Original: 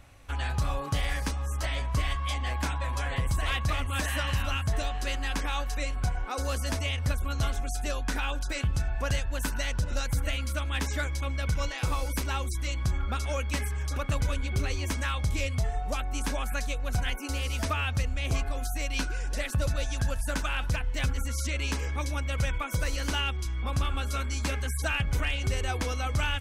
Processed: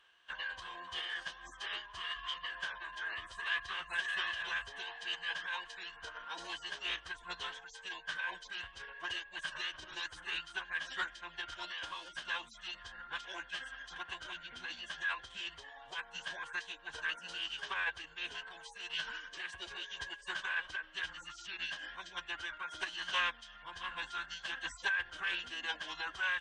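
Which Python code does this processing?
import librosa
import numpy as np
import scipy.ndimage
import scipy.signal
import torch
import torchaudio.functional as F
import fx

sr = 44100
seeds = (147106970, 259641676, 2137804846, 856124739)

y = fx.double_bandpass(x, sr, hz=2200.0, octaves=0.92)
y = fx.pitch_keep_formants(y, sr, semitones=-8.0)
y = y * librosa.db_to_amplitude(4.0)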